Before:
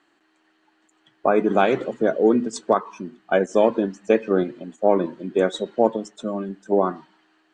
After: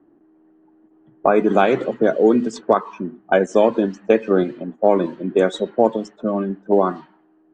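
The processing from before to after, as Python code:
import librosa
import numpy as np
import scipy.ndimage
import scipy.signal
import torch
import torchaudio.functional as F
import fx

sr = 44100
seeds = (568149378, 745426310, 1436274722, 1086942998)

y = fx.env_lowpass(x, sr, base_hz=360.0, full_db=-17.5)
y = fx.band_squash(y, sr, depth_pct=40)
y = y * 10.0 ** (3.0 / 20.0)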